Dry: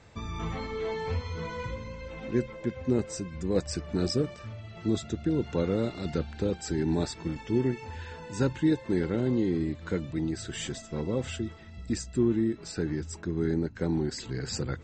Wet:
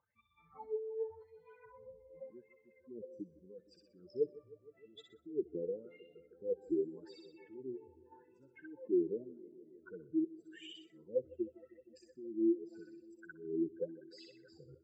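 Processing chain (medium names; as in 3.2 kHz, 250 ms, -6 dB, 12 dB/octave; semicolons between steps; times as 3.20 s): spectral contrast enhancement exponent 2.8; 10.24–10.90 s: pre-emphasis filter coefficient 0.8; feedback echo behind a high-pass 62 ms, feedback 49%, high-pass 1.5 kHz, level -3.5 dB; wah-wah 0.86 Hz 330–3000 Hz, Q 8.3; bucket-brigade echo 155 ms, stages 1024, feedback 79%, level -21 dB; trim +1.5 dB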